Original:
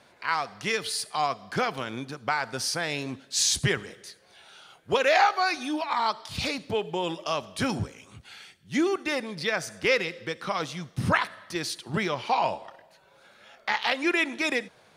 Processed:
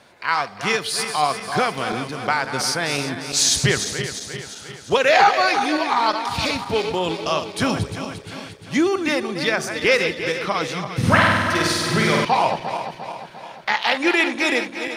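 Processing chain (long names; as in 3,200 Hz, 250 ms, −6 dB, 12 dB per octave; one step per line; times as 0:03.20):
feedback delay that plays each chunk backwards 175 ms, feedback 72%, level −8.5 dB
0:10.98–0:12.25: flutter between parallel walls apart 8.5 metres, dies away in 1.4 s
level +6 dB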